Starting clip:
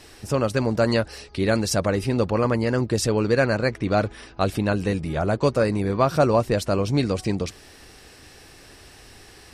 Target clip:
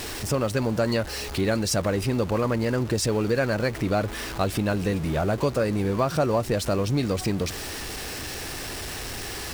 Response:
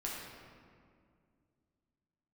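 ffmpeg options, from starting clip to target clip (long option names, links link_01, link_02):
-af "aeval=exprs='val(0)+0.5*0.0335*sgn(val(0))':channel_layout=same,acompressor=threshold=-23dB:ratio=2"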